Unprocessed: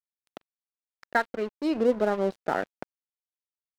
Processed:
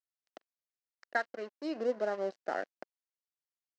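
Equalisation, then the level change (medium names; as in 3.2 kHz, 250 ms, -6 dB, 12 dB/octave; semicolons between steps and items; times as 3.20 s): cabinet simulation 430–6400 Hz, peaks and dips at 440 Hz -5 dB, 920 Hz -9 dB, 1.3 kHz -6 dB, 2.4 kHz -7 dB, 3.5 kHz -9 dB; -3.0 dB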